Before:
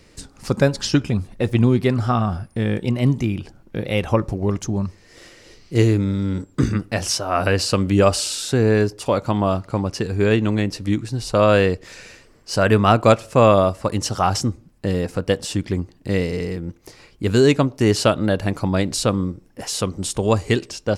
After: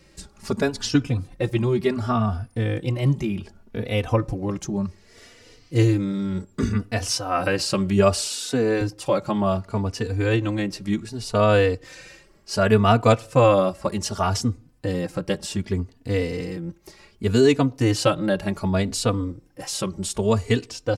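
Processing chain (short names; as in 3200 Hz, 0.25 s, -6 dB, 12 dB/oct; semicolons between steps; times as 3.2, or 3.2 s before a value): 8.26–8.81 HPF 160 Hz 24 dB/oct; endless flanger 3.3 ms +0.66 Hz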